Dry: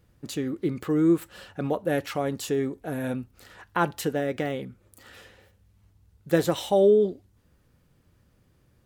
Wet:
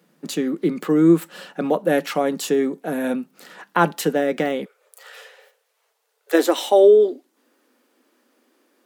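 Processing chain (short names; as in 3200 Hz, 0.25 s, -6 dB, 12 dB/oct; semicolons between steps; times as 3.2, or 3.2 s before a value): Chebyshev high-pass 160 Hz, order 6, from 4.64 s 430 Hz, from 6.33 s 240 Hz; gain +7.5 dB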